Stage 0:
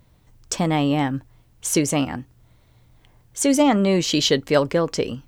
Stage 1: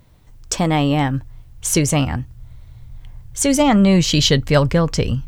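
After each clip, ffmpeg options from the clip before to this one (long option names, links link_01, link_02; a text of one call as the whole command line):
ffmpeg -i in.wav -af "asubboost=boost=10:cutoff=110,volume=4dB" out.wav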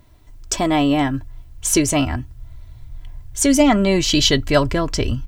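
ffmpeg -i in.wav -af "aecho=1:1:3:0.64,volume=-1dB" out.wav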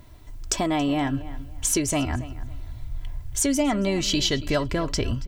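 ffmpeg -i in.wav -filter_complex "[0:a]acompressor=threshold=-27dB:ratio=3,asplit=2[link_01][link_02];[link_02]adelay=278,lowpass=frequency=3800:poles=1,volume=-16dB,asplit=2[link_03][link_04];[link_04]adelay=278,lowpass=frequency=3800:poles=1,volume=0.26,asplit=2[link_05][link_06];[link_06]adelay=278,lowpass=frequency=3800:poles=1,volume=0.26[link_07];[link_01][link_03][link_05][link_07]amix=inputs=4:normalize=0,volume=3dB" out.wav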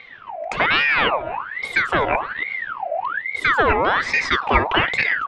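ffmpeg -i in.wav -af "lowpass=frequency=1600:width_type=q:width=4,aeval=exprs='val(0)*sin(2*PI*1400*n/s+1400*0.55/1.2*sin(2*PI*1.2*n/s))':channel_layout=same,volume=7.5dB" out.wav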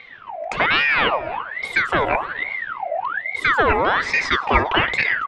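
ffmpeg -i in.wav -af "aecho=1:1:335:0.075" out.wav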